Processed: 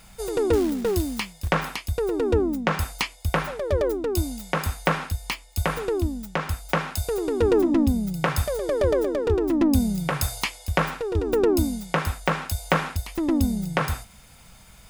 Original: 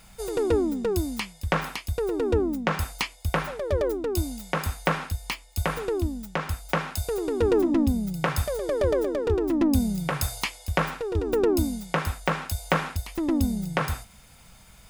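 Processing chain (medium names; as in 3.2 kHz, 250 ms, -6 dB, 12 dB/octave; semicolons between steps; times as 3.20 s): 0.53–1.50 s: short-mantissa float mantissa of 2-bit; trim +2 dB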